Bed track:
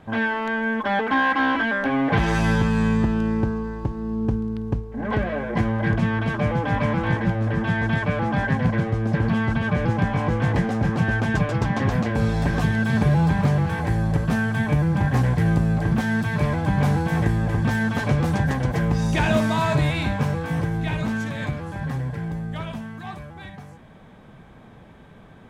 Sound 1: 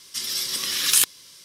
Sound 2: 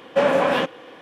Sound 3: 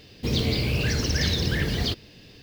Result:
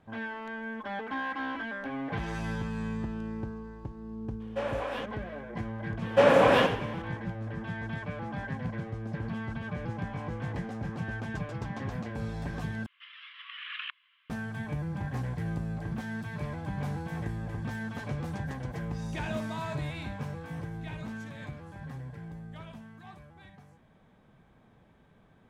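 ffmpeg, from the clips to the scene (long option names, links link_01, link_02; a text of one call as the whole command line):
ffmpeg -i bed.wav -i cue0.wav -i cue1.wav -filter_complex "[2:a]asplit=2[link_01][link_02];[0:a]volume=-14dB[link_03];[link_01]highpass=300[link_04];[link_02]asplit=5[link_05][link_06][link_07][link_08][link_09];[link_06]adelay=88,afreqshift=-59,volume=-9dB[link_10];[link_07]adelay=176,afreqshift=-118,volume=-18.4dB[link_11];[link_08]adelay=264,afreqshift=-177,volume=-27.7dB[link_12];[link_09]adelay=352,afreqshift=-236,volume=-37.1dB[link_13];[link_05][link_10][link_11][link_12][link_13]amix=inputs=5:normalize=0[link_14];[1:a]asuperpass=centerf=1800:order=12:qfactor=0.89[link_15];[link_03]asplit=2[link_16][link_17];[link_16]atrim=end=12.864[link_18];[link_15]atrim=end=1.44,asetpts=PTS-STARTPTS,volume=-8.5dB[link_19];[link_17]atrim=start=14.296[link_20];[link_04]atrim=end=1.01,asetpts=PTS-STARTPTS,volume=-14.5dB,afade=type=in:duration=0.004:curve=hsin,afade=type=out:start_time=1.006:duration=0.004:curve=hsin,adelay=4400[link_21];[link_14]atrim=end=1.01,asetpts=PTS-STARTPTS,volume=-2dB,afade=type=in:duration=0.004:curve=hsin,afade=type=out:start_time=1.006:duration=0.004:curve=hsin,adelay=6010[link_22];[link_18][link_19]acrossfade=duration=0.004:curve1=hsin:curve2=hsin[link_23];[link_23][link_20]acrossfade=duration=0.004:curve1=hsin:curve2=hsin[link_24];[link_24][link_21][link_22]amix=inputs=3:normalize=0" out.wav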